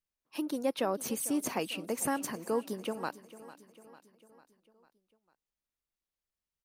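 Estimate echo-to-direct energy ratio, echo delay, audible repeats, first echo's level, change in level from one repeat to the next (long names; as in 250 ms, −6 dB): −15.5 dB, 449 ms, 4, −17.0 dB, −5.0 dB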